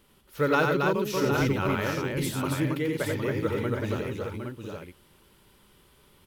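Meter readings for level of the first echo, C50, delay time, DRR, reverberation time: -4.5 dB, none, 89 ms, none, none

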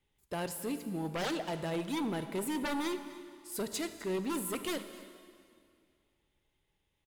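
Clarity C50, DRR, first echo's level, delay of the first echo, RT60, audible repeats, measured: 10.0 dB, 9.0 dB, -18.0 dB, 0.256 s, 2.3 s, 1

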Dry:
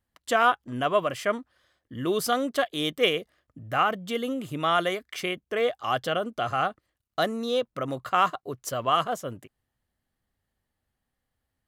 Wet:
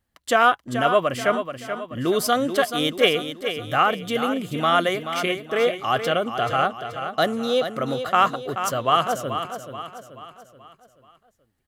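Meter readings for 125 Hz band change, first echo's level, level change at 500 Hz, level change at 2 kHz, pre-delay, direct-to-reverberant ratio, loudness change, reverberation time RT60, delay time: +5.0 dB, -9.0 dB, +5.0 dB, +5.0 dB, none, none, +4.5 dB, none, 0.431 s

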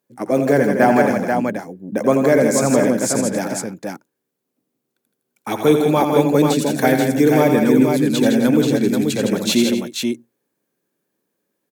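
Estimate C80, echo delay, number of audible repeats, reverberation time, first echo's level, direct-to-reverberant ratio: none, 85 ms, 4, none, -7.5 dB, none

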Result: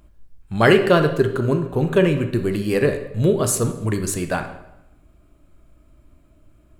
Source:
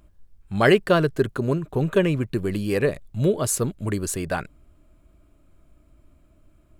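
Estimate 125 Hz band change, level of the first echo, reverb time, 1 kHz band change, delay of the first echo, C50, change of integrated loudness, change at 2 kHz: +3.5 dB, none, 0.85 s, +3.5 dB, none, 9.0 dB, +3.5 dB, +3.5 dB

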